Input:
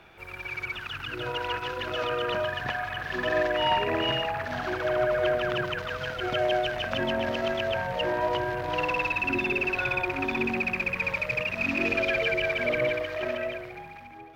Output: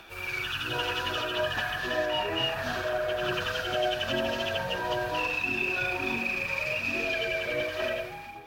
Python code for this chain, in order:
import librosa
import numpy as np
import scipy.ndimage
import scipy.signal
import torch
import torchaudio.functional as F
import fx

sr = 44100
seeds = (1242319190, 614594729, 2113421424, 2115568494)

y = fx.rider(x, sr, range_db=4, speed_s=0.5)
y = fx.high_shelf(y, sr, hz=2800.0, db=11.0)
y = y + 10.0 ** (-19.0 / 20.0) * np.pad(y, (int(88 * sr / 1000.0), 0))[:len(y)]
y = fx.stretch_vocoder_free(y, sr, factor=0.59)
y = fx.notch(y, sr, hz=2100.0, q=7.0)